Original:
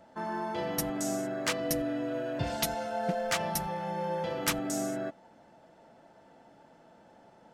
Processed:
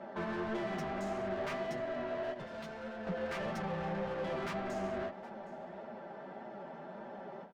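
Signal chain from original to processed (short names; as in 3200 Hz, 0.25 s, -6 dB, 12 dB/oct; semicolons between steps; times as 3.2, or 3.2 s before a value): BPF 120–6300 Hz; tilt -2.5 dB/oct; compressor 4:1, threshold -32 dBFS, peak gain reduction 10 dB; comb 5.1 ms, depth 89%; overdrive pedal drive 30 dB, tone 1500 Hz, clips at -19 dBFS; 2.34–3.07 expander -22 dBFS; flange 1.7 Hz, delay 7.9 ms, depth 5.5 ms, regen +42%; echo 0.765 s -20 dB; ending taper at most 160 dB/s; gain -6.5 dB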